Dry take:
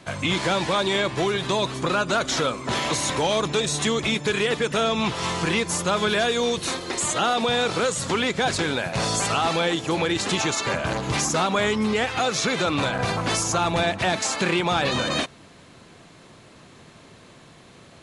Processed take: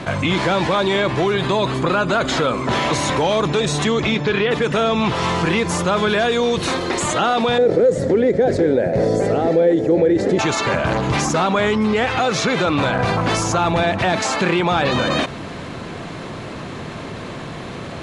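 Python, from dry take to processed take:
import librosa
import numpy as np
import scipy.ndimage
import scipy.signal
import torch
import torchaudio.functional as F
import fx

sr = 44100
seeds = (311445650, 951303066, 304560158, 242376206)

y = fx.notch(x, sr, hz=5700.0, q=7.3, at=(1.35, 2.59))
y = fx.lowpass(y, sr, hz=fx.line((3.84, 9300.0), (4.5, 4300.0)), slope=24, at=(3.84, 4.5), fade=0.02)
y = fx.curve_eq(y, sr, hz=(150.0, 520.0, 1100.0, 1900.0, 2700.0, 4800.0), db=(0, 11, -17, -3, -17, -10), at=(7.58, 10.39))
y = fx.lowpass(y, sr, hz=2300.0, slope=6)
y = fx.env_flatten(y, sr, amount_pct=50)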